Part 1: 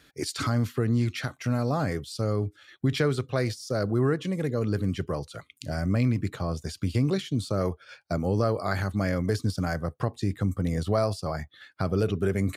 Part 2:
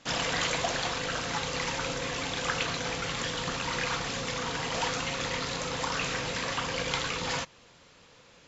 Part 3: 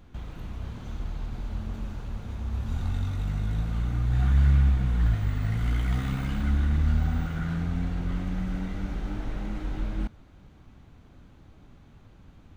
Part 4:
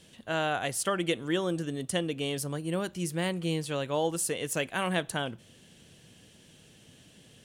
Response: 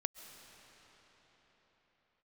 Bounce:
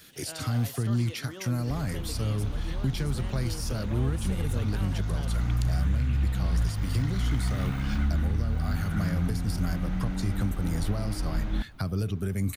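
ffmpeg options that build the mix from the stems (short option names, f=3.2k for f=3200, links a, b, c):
-filter_complex "[0:a]aemphasis=mode=production:type=75kf,acrossover=split=220[a][b];[b]acompressor=threshold=-35dB:ratio=6[c];[a][c]amix=inputs=2:normalize=0,volume=0dB[d];[1:a]asplit=2[e][f];[f]afreqshift=0.5[g];[e][g]amix=inputs=2:normalize=1,adelay=100,volume=-13.5dB[h];[2:a]adelay=1550,volume=1.5dB[i];[3:a]alimiter=limit=-23.5dB:level=0:latency=1,volume=-3.5dB[j];[h][j]amix=inputs=2:normalize=0,acompressor=threshold=-52dB:ratio=1.5,volume=0dB[k];[d][i]amix=inputs=2:normalize=0,equalizer=f=460:w=1.5:g=-3,alimiter=limit=-17.5dB:level=0:latency=1:release=499,volume=0dB[l];[k][l]amix=inputs=2:normalize=0,equalizer=f=7.5k:w=5.2:g=-3.5"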